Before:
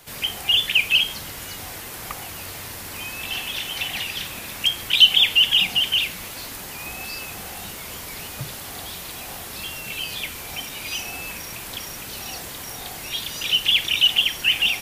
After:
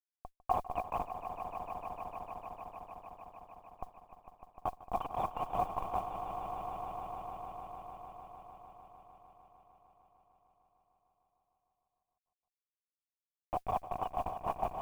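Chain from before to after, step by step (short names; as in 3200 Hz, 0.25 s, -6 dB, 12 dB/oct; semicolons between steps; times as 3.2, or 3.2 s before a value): Schmitt trigger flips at -13 dBFS; vocal tract filter a; modulation noise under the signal 30 dB; swelling echo 0.151 s, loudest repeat 5, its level -11.5 dB; gain +12 dB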